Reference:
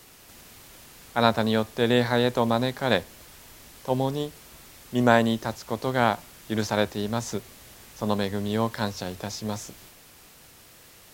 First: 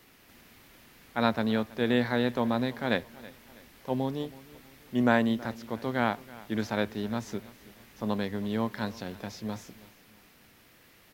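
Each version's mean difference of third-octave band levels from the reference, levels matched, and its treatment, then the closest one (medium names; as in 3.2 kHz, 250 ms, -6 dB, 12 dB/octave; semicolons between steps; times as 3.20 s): 3.5 dB: graphic EQ 250/2000/8000 Hz +6/+5/-7 dB; on a send: feedback delay 324 ms, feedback 42%, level -20 dB; on the sum: trim -7.5 dB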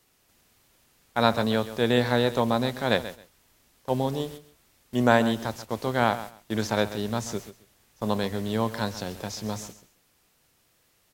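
5.5 dB: gate -40 dBFS, range -14 dB; on a send: feedback delay 134 ms, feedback 18%, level -14 dB; on the sum: trim -1 dB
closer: first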